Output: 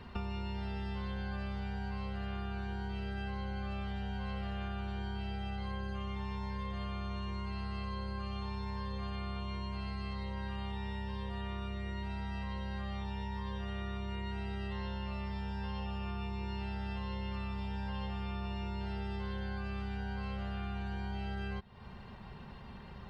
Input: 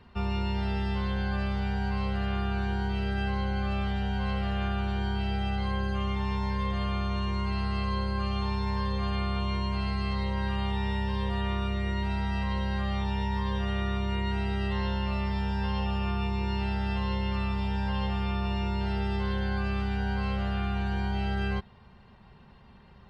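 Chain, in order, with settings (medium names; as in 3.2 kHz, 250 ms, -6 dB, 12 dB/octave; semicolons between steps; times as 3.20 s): compression, threshold -42 dBFS, peak gain reduction 15.5 dB; trim +5 dB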